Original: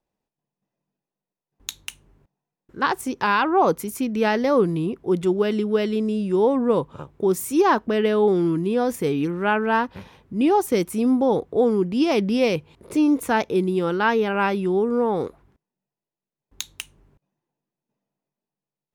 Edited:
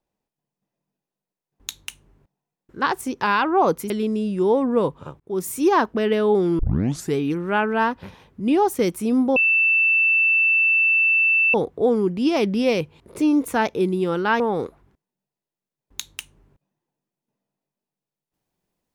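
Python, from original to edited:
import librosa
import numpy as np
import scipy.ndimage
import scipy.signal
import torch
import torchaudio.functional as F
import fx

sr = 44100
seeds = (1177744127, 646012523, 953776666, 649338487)

y = fx.edit(x, sr, fx.cut(start_s=3.9, length_s=1.93),
    fx.fade_in_span(start_s=7.13, length_s=0.29),
    fx.tape_start(start_s=8.52, length_s=0.57),
    fx.insert_tone(at_s=11.29, length_s=2.18, hz=2660.0, db=-14.5),
    fx.cut(start_s=14.15, length_s=0.86), tone=tone)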